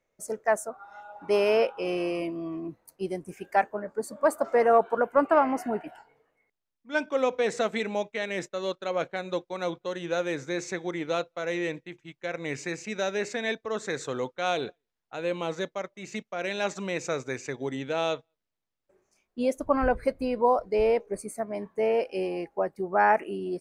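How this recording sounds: noise floor -84 dBFS; spectral tilt -4.5 dB/oct

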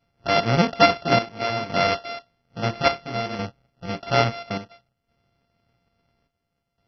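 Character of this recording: a buzz of ramps at a fixed pitch in blocks of 64 samples; chopped level 0.59 Hz, depth 65%, duty 70%; MP2

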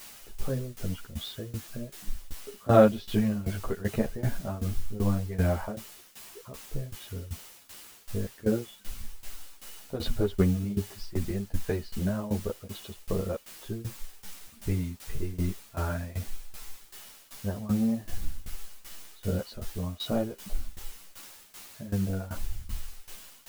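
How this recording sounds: a quantiser's noise floor 8-bit, dither triangular; tremolo saw down 2.6 Hz, depth 90%; a shimmering, thickened sound

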